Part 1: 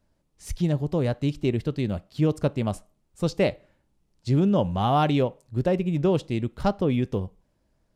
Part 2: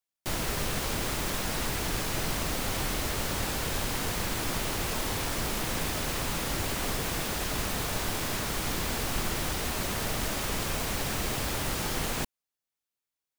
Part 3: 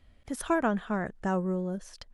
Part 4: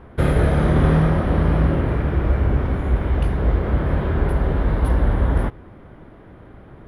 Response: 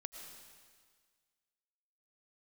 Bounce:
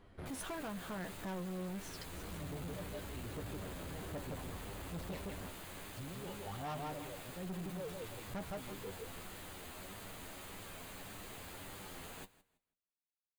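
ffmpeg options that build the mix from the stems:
-filter_complex "[0:a]aphaser=in_gain=1:out_gain=1:delay=2.4:decay=0.78:speed=1.2:type=sinusoidal,adelay=1700,volume=-19dB,asplit=2[link_01][link_02];[link_02]volume=-3.5dB[link_03];[1:a]equalizer=frequency=5500:width_type=o:width=0.27:gain=-12,volume=-12.5dB,asplit=2[link_04][link_05];[link_05]volume=-20dB[link_06];[2:a]acompressor=threshold=-32dB:ratio=6,volume=2dB,asplit=2[link_07][link_08];[3:a]asoftclip=type=tanh:threshold=-20.5dB,volume=-14.5dB[link_09];[link_08]apad=whole_len=303372[link_10];[link_09][link_10]sidechaincompress=threshold=-51dB:ratio=8:attack=16:release=187[link_11];[link_03][link_06]amix=inputs=2:normalize=0,aecho=0:1:164|328|492|656:1|0.24|0.0576|0.0138[link_12];[link_01][link_04][link_07][link_11][link_12]amix=inputs=5:normalize=0,lowshelf=frequency=120:gain=-4.5,flanger=delay=9.9:depth=1.8:regen=38:speed=1.7:shape=triangular,asoftclip=type=tanh:threshold=-38.5dB"

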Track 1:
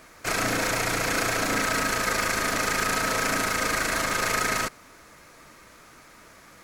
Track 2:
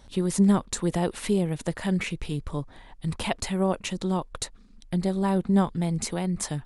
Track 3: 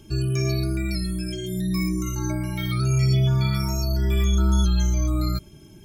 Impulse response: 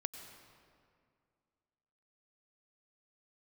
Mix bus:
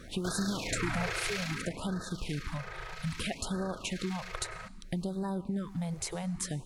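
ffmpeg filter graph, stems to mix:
-filter_complex "[0:a]lowshelf=frequency=230:gain=8,acrossover=split=2100|4600[link_01][link_02][link_03];[link_01]acompressor=threshold=-32dB:ratio=4[link_04];[link_03]acompressor=threshold=-54dB:ratio=4[link_05];[link_04][link_02][link_05]amix=inputs=3:normalize=0,acrossover=split=2000[link_06][link_07];[link_06]aeval=exprs='val(0)*(1-0.7/2+0.7/2*cos(2*PI*1.1*n/s))':channel_layout=same[link_08];[link_07]aeval=exprs='val(0)*(1-0.7/2-0.7/2*cos(2*PI*1.1*n/s))':channel_layout=same[link_09];[link_08][link_09]amix=inputs=2:normalize=0,volume=-0.5dB,afade=type=out:start_time=1.37:duration=0.36:silence=0.316228[link_10];[1:a]acompressor=threshold=-26dB:ratio=6,volume=0.5dB,asplit=2[link_11][link_12];[link_12]volume=-13dB[link_13];[link_11]acompressor=threshold=-38dB:ratio=2.5,volume=0dB[link_14];[3:a]atrim=start_sample=2205[link_15];[link_13][link_15]afir=irnorm=-1:irlink=0[link_16];[link_10][link_14][link_16]amix=inputs=3:normalize=0,afftfilt=real='re*(1-between(b*sr/1024,220*pow(2600/220,0.5+0.5*sin(2*PI*0.62*pts/sr))/1.41,220*pow(2600/220,0.5+0.5*sin(2*PI*0.62*pts/sr))*1.41))':imag='im*(1-between(b*sr/1024,220*pow(2600/220,0.5+0.5*sin(2*PI*0.62*pts/sr))/1.41,220*pow(2600/220,0.5+0.5*sin(2*PI*0.62*pts/sr))*1.41))':win_size=1024:overlap=0.75"

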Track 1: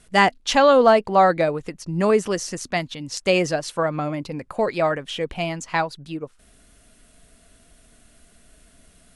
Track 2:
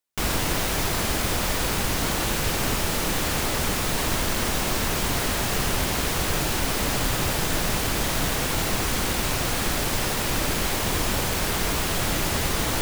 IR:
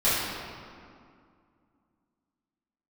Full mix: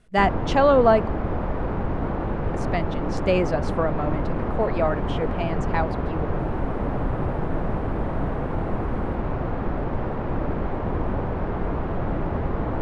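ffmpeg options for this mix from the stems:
-filter_complex "[0:a]volume=-1.5dB,asplit=3[link_01][link_02][link_03];[link_01]atrim=end=1.08,asetpts=PTS-STARTPTS,afade=type=out:start_time=1.076:duration=0.004:curve=hsin[link_04];[link_02]atrim=start=1.08:end=2.54,asetpts=PTS-STARTPTS,volume=0[link_05];[link_03]atrim=start=2.54,asetpts=PTS-STARTPTS,afade=type=in:duration=0.004:curve=hsin[link_06];[link_04][link_05][link_06]concat=n=3:v=0:a=1[link_07];[1:a]lowpass=1100,volume=2dB[link_08];[link_07][link_08]amix=inputs=2:normalize=0,lowpass=frequency=1400:poles=1"

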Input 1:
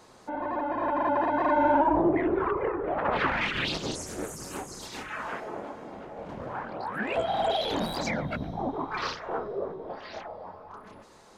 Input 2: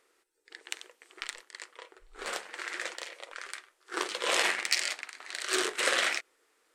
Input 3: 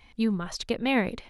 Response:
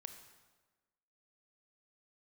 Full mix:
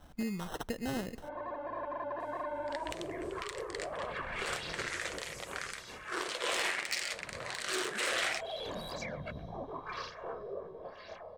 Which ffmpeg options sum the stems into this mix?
-filter_complex "[0:a]aecho=1:1:1.8:0.5,adelay=950,volume=-9dB[link_01];[1:a]asoftclip=type=tanh:threshold=-18dB,adelay=2200,volume=2.5dB[link_02];[2:a]acrusher=samples=19:mix=1:aa=0.000001,volume=-1.5dB,asplit=2[link_03][link_04];[link_04]volume=-20dB[link_05];[link_01][link_03]amix=inputs=2:normalize=0,acompressor=threshold=-36dB:ratio=4,volume=0dB[link_06];[3:a]atrim=start_sample=2205[link_07];[link_05][link_07]afir=irnorm=-1:irlink=0[link_08];[link_02][link_06][link_08]amix=inputs=3:normalize=0,alimiter=limit=-23.5dB:level=0:latency=1:release=131"

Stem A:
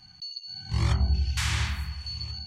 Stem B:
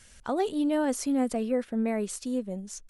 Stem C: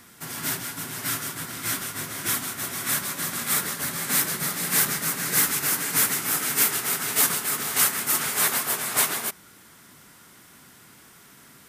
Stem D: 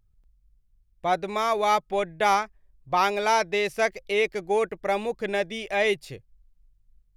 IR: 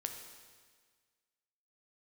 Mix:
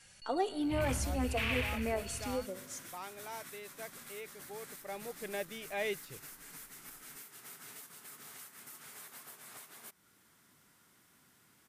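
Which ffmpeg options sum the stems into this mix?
-filter_complex "[0:a]asoftclip=type=tanh:threshold=-28dB,aeval=exprs='0.0398*(cos(1*acos(clip(val(0)/0.0398,-1,1)))-cos(1*PI/2))+0.00631*(cos(3*acos(clip(val(0)/0.0398,-1,1)))-cos(3*PI/2))+0.00316*(cos(6*acos(clip(val(0)/0.0398,-1,1)))-cos(6*PI/2))':channel_layout=same,lowpass=frequency=2600:width_type=q:width=4.9,volume=-6.5dB[link_01];[1:a]highpass=360,asplit=2[link_02][link_03];[link_03]adelay=3.9,afreqshift=3[link_04];[link_02][link_04]amix=inputs=2:normalize=1,volume=-4.5dB,asplit=2[link_05][link_06];[link_06]volume=-5dB[link_07];[2:a]acompressor=threshold=-32dB:ratio=2.5,alimiter=limit=-23.5dB:level=0:latency=1:release=411,adelay=600,volume=-15.5dB[link_08];[3:a]volume=-12.5dB,afade=type=in:start_time=4.66:duration=0.75:silence=0.281838[link_09];[4:a]atrim=start_sample=2205[link_10];[link_07][link_10]afir=irnorm=-1:irlink=0[link_11];[link_01][link_05][link_08][link_09][link_11]amix=inputs=5:normalize=0"

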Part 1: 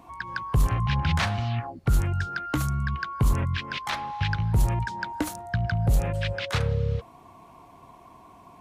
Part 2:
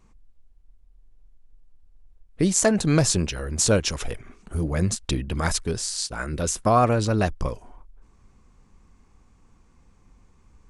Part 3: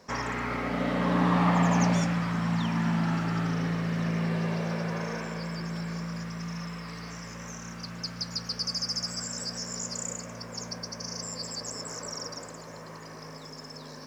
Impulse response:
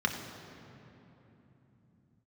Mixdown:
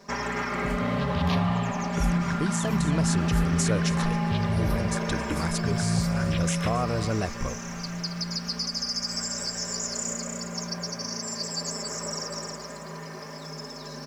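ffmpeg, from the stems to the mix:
-filter_complex "[0:a]asplit=2[link_01][link_02];[link_02]afreqshift=-0.62[link_03];[link_01][link_03]amix=inputs=2:normalize=1,adelay=100,volume=-13dB[link_04];[1:a]volume=-15.5dB,asplit=2[link_05][link_06];[link_06]volume=-8.5dB[link_07];[2:a]aecho=1:1:5:0.9,alimiter=limit=-21dB:level=0:latency=1:release=117,volume=1dB,asplit=2[link_08][link_09];[link_09]volume=-6dB[link_10];[link_04][link_05]amix=inputs=2:normalize=0,dynaudnorm=framelen=180:gausssize=11:maxgain=11dB,alimiter=limit=-18.5dB:level=0:latency=1:release=238,volume=0dB[link_11];[link_07][link_10]amix=inputs=2:normalize=0,aecho=0:1:272:1[link_12];[link_08][link_11][link_12]amix=inputs=3:normalize=0"

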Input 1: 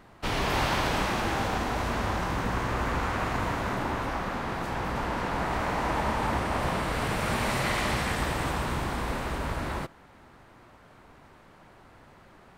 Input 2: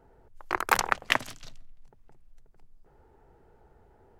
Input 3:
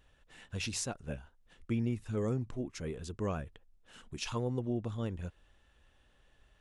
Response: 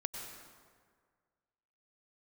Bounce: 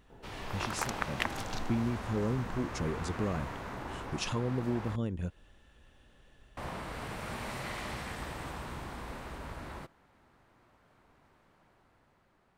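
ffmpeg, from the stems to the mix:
-filter_complex "[0:a]volume=-15.5dB,asplit=3[link_01][link_02][link_03];[link_01]atrim=end=4.96,asetpts=PTS-STARTPTS,afade=type=out:start_time=4.956:duration=0.004:curve=hsin[link_04];[link_02]atrim=start=4.96:end=6.57,asetpts=PTS-STARTPTS,volume=0[link_05];[link_03]atrim=start=6.57,asetpts=PTS-STARTPTS,afade=type=in:duration=0.004:curve=hsin[link_06];[link_04][link_05][link_06]concat=n=3:v=0:a=1[link_07];[1:a]adelay=100,volume=2.5dB[link_08];[2:a]volume=0.5dB,asplit=2[link_09][link_10];[link_10]apad=whole_len=189571[link_11];[link_08][link_11]sidechaincompress=threshold=-40dB:ratio=8:attack=16:release=524[link_12];[link_12][link_09]amix=inputs=2:normalize=0,equalizer=frequency=210:width_type=o:width=2.3:gain=5.5,acompressor=threshold=-36dB:ratio=2.5,volume=0dB[link_13];[link_07][link_13]amix=inputs=2:normalize=0,dynaudnorm=framelen=280:gausssize=7:maxgain=4dB"

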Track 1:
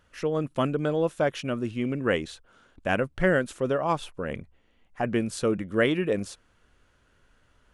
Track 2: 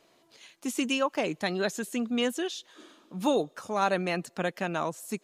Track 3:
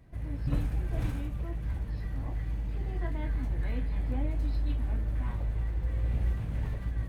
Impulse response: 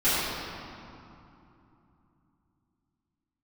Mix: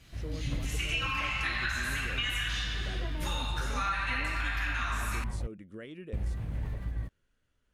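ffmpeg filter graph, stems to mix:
-filter_complex "[0:a]equalizer=frequency=940:width=0.95:gain=-7.5,alimiter=limit=-22.5dB:level=0:latency=1:release=275,volume=-12dB[link_01];[1:a]highpass=frequency=1400:width=0.5412,highpass=frequency=1400:width=1.3066,acrossover=split=2900[link_02][link_03];[link_03]acompressor=threshold=-46dB:ratio=4:attack=1:release=60[link_04];[link_02][link_04]amix=inputs=2:normalize=0,volume=0dB,asplit=2[link_05][link_06];[link_06]volume=-5dB[link_07];[2:a]volume=-1.5dB,asplit=3[link_08][link_09][link_10];[link_08]atrim=end=5.47,asetpts=PTS-STARTPTS,afade=type=out:start_time=5.466:duration=0.004:curve=hsin[link_11];[link_09]atrim=start=5.47:end=6.13,asetpts=PTS-STARTPTS,volume=0[link_12];[link_10]atrim=start=6.13,asetpts=PTS-STARTPTS,afade=type=in:duration=0.004:curve=hsin[link_13];[link_11][link_12][link_13]concat=n=3:v=0:a=1[link_14];[3:a]atrim=start_sample=2205[link_15];[link_07][link_15]afir=irnorm=-1:irlink=0[link_16];[link_01][link_05][link_14][link_16]amix=inputs=4:normalize=0,acompressor=threshold=-28dB:ratio=6"

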